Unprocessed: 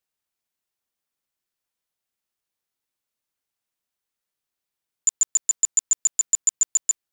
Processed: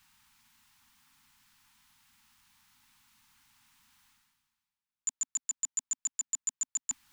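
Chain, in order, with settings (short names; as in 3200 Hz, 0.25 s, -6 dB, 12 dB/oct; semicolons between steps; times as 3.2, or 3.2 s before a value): elliptic band-stop 260–860 Hz, stop band 40 dB; high shelf 5100 Hz -9 dB; reverse; upward compressor, threshold -35 dBFS; reverse; gain -6.5 dB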